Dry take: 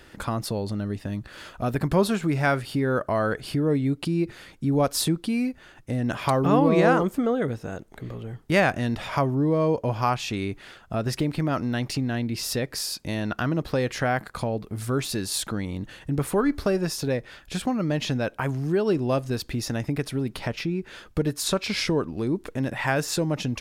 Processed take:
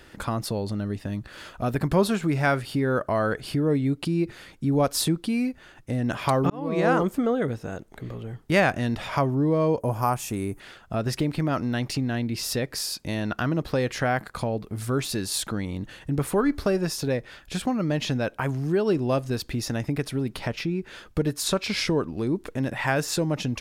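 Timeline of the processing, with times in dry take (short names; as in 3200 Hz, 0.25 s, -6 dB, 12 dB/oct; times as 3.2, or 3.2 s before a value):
6.5–7 fade in
9.8–10.6 EQ curve 1000 Hz 0 dB, 4000 Hz -12 dB, 9400 Hz +13 dB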